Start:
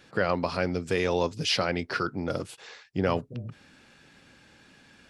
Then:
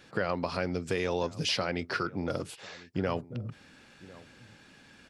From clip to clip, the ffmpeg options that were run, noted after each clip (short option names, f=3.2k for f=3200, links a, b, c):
-filter_complex "[0:a]acompressor=threshold=-29dB:ratio=2,asplit=2[a][b];[b]adelay=1050,volume=-20dB,highshelf=f=4k:g=-23.6[c];[a][c]amix=inputs=2:normalize=0"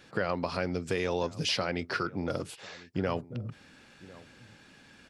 -af anull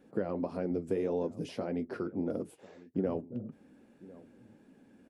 -af "firequalizer=gain_entry='entry(130,0);entry(230,12);entry(1200,-6);entry(4400,-15);entry(9900,-1)':delay=0.05:min_phase=1,flanger=delay=4.2:depth=6.4:regen=-56:speed=1.7:shape=sinusoidal,volume=-4.5dB"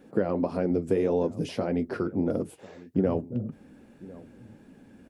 -af "asubboost=boost=2:cutoff=170,volume=7.5dB"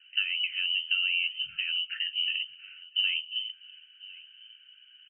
-filter_complex "[0:a]asplit=2[a][b];[b]adelay=322,lowpass=f=1.5k:p=1,volume=-22.5dB,asplit=2[c][d];[d]adelay=322,lowpass=f=1.5k:p=1,volume=0.53,asplit=2[e][f];[f]adelay=322,lowpass=f=1.5k:p=1,volume=0.53,asplit=2[g][h];[h]adelay=322,lowpass=f=1.5k:p=1,volume=0.53[i];[a][c][e][g][i]amix=inputs=5:normalize=0,lowpass=f=2.7k:t=q:w=0.5098,lowpass=f=2.7k:t=q:w=0.6013,lowpass=f=2.7k:t=q:w=0.9,lowpass=f=2.7k:t=q:w=2.563,afreqshift=-3200,afftfilt=real='re*(1-between(b*sr/4096,210,1300))':imag='im*(1-between(b*sr/4096,210,1300))':win_size=4096:overlap=0.75,volume=-3.5dB"